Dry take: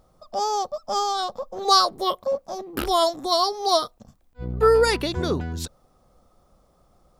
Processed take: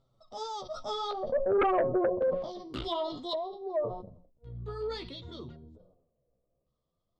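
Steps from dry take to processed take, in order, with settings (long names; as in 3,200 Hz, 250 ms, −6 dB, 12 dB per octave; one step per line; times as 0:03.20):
source passing by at 0:01.66, 16 m/s, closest 3.9 metres
thirty-one-band graphic EQ 125 Hz +9 dB, 800 Hz −7 dB, 1,600 Hz −12 dB, 2,500 Hz −11 dB, 8,000 Hz +7 dB
auto-filter low-pass square 0.45 Hz 580–3,500 Hz
high-shelf EQ 11,000 Hz +12 dB
hum removal 181.6 Hz, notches 33
flanger 0.54 Hz, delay 7.3 ms, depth 9 ms, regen +11%
treble cut that deepens with the level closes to 1,000 Hz, closed at −31.5 dBFS
sine wavefolder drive 10 dB, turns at −14.5 dBFS
level that may fall only so fast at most 73 dB per second
level −7 dB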